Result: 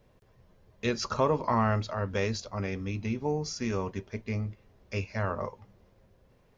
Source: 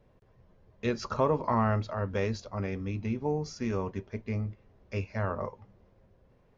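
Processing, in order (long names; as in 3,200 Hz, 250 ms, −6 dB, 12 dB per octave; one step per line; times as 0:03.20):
high-shelf EQ 2,800 Hz +9.5 dB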